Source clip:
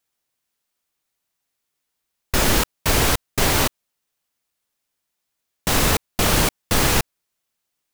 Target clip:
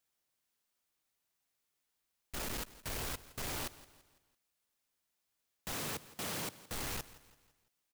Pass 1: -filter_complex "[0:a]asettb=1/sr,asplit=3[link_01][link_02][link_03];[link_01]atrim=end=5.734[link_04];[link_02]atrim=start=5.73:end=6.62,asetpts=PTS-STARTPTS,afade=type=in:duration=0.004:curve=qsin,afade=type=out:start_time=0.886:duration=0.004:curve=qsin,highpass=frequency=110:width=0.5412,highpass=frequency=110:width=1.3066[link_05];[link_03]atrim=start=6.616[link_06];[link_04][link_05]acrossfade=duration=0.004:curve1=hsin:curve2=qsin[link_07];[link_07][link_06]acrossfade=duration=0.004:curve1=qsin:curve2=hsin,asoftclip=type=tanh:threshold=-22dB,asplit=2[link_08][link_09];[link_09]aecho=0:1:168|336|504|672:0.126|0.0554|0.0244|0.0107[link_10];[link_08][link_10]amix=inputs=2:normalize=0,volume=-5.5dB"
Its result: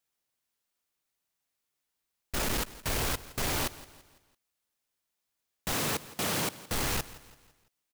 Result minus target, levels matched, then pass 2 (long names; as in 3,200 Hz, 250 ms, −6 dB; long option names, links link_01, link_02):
soft clipping: distortion −4 dB
-filter_complex "[0:a]asettb=1/sr,asplit=3[link_01][link_02][link_03];[link_01]atrim=end=5.734[link_04];[link_02]atrim=start=5.73:end=6.62,asetpts=PTS-STARTPTS,afade=type=in:duration=0.004:curve=qsin,afade=type=out:start_time=0.886:duration=0.004:curve=qsin,highpass=frequency=110:width=0.5412,highpass=frequency=110:width=1.3066[link_05];[link_03]atrim=start=6.616[link_06];[link_04][link_05]acrossfade=duration=0.004:curve1=hsin:curve2=qsin[link_07];[link_07][link_06]acrossfade=duration=0.004:curve1=qsin:curve2=hsin,asoftclip=type=tanh:threshold=-33dB,asplit=2[link_08][link_09];[link_09]aecho=0:1:168|336|504|672:0.126|0.0554|0.0244|0.0107[link_10];[link_08][link_10]amix=inputs=2:normalize=0,volume=-5.5dB"